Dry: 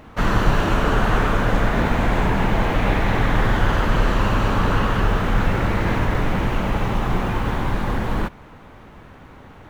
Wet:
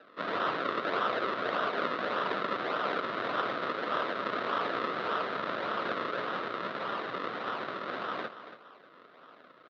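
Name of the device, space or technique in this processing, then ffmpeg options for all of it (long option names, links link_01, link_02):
circuit-bent sampling toy: -af "acrusher=samples=39:mix=1:aa=0.000001:lfo=1:lforange=39:lforate=1.7,highpass=frequency=110:width=0.5412,highpass=frequency=110:width=1.3066,lowpass=2100,highpass=600,equalizer=frequency=840:width_type=q:width=4:gain=-10,equalizer=frequency=1300:width_type=q:width=4:gain=7,equalizer=frequency=2400:width_type=q:width=4:gain=-4,equalizer=frequency=3800:width_type=q:width=4:gain=8,lowpass=frequency=5100:width=0.5412,lowpass=frequency=5100:width=1.3066,aecho=1:1:281:0.251,volume=-3.5dB"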